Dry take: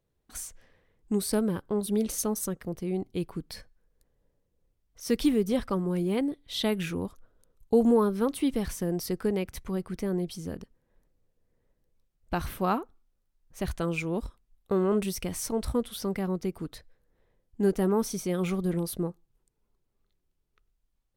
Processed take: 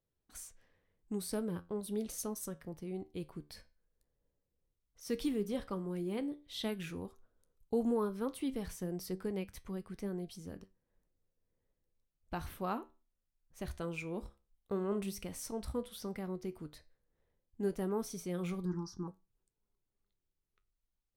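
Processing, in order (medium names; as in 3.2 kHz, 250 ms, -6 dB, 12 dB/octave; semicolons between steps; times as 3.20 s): 18.65–19.08 s: FFT filter 340 Hz 0 dB, 610 Hz -28 dB, 880 Hz +9 dB, 1.6 kHz +1 dB, 2.3 kHz -23 dB, 3.7 kHz -17 dB, 5.6 kHz +11 dB, 9.6 kHz -27 dB; flange 0.1 Hz, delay 9.7 ms, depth 5.5 ms, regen +75%; trim -5.5 dB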